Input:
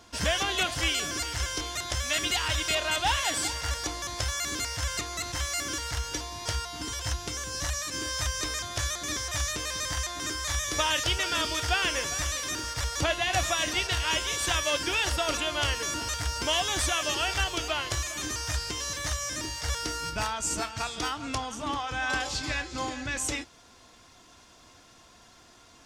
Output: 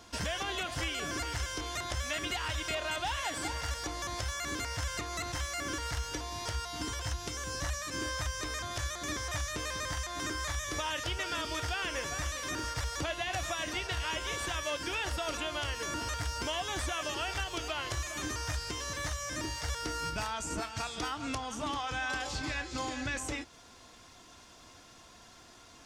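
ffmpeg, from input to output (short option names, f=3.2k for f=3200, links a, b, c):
-filter_complex "[0:a]acrossover=split=2300[a][b];[a]alimiter=level_in=3dB:limit=-24dB:level=0:latency=1:release=216,volume=-3dB[c];[b]acompressor=threshold=-40dB:ratio=6[d];[c][d]amix=inputs=2:normalize=0"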